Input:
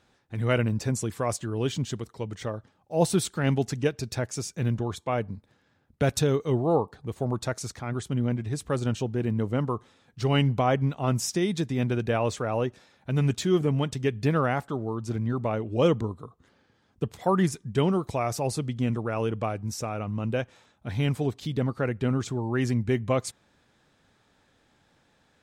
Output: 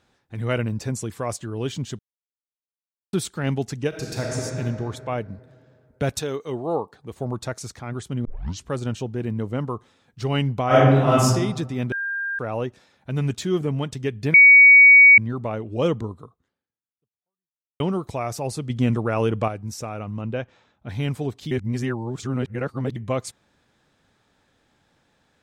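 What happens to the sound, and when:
0:01.99–0:03.13: silence
0:03.88–0:04.39: thrown reverb, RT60 2.8 s, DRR −3 dB
0:06.19–0:07.11: high-pass filter 480 Hz → 190 Hz 6 dB per octave
0:08.25: tape start 0.44 s
0:10.66–0:11.23: thrown reverb, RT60 1.1 s, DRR −10.5 dB
0:11.92–0:12.39: beep over 1,600 Hz −24 dBFS
0:14.34–0:15.18: beep over 2,250 Hz −6.5 dBFS
0:16.23–0:17.80: fade out exponential
0:18.70–0:19.48: clip gain +6 dB
0:20.21–0:20.89: Gaussian smoothing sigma 1.5 samples
0:21.51–0:22.96: reverse

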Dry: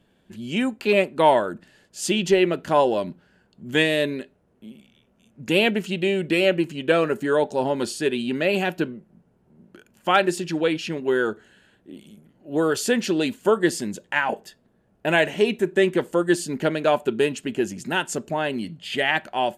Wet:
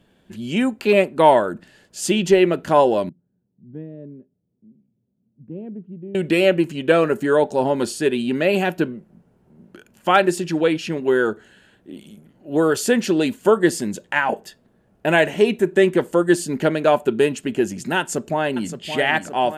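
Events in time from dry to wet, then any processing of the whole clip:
0:03.09–0:06.15: four-pole ladder band-pass 160 Hz, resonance 25%
0:17.99–0:18.75: delay throw 570 ms, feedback 70%, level −9.5 dB
whole clip: dynamic equaliser 3,600 Hz, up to −4 dB, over −39 dBFS, Q 0.74; level +4 dB

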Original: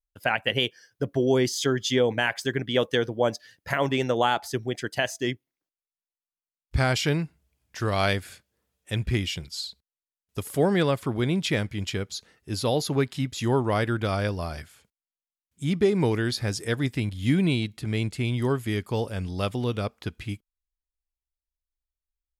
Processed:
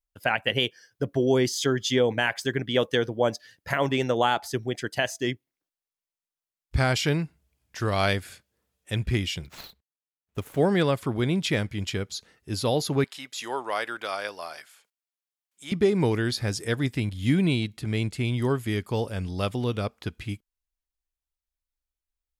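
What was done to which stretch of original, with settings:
0:09.45–0:10.61: running median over 9 samples
0:13.04–0:15.72: high-pass filter 670 Hz

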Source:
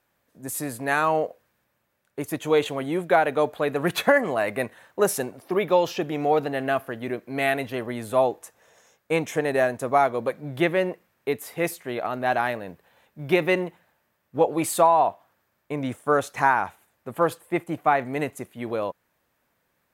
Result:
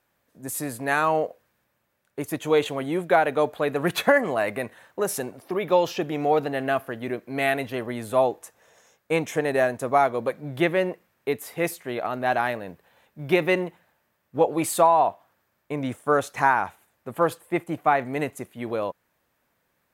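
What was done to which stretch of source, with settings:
0:04.57–0:05.72: downward compressor 1.5 to 1, threshold −27 dBFS

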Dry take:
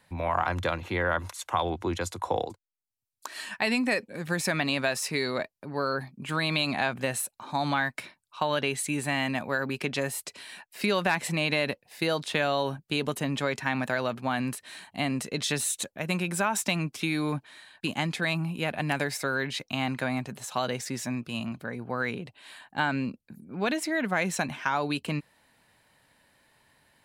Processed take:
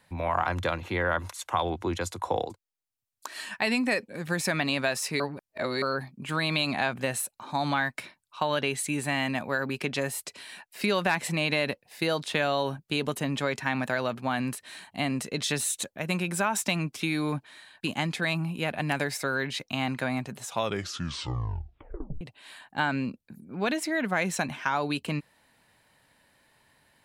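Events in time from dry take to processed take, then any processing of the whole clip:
0:05.20–0:05.82: reverse
0:20.41: tape stop 1.80 s

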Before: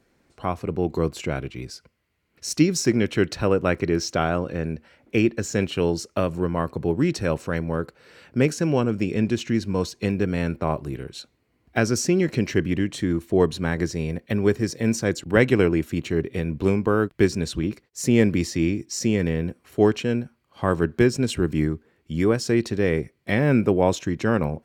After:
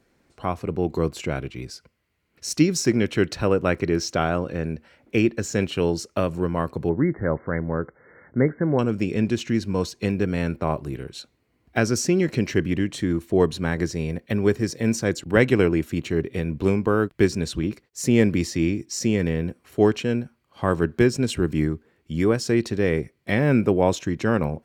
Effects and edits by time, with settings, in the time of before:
0:06.89–0:08.79: linear-phase brick-wall low-pass 2,200 Hz

